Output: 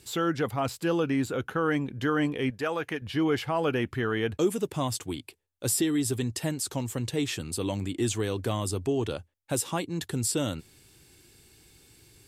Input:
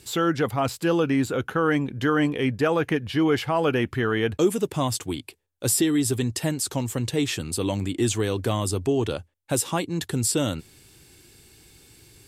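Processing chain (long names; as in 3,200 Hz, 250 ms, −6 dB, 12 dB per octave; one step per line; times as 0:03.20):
0:02.50–0:03.02: low-shelf EQ 410 Hz −9.5 dB
level −4.5 dB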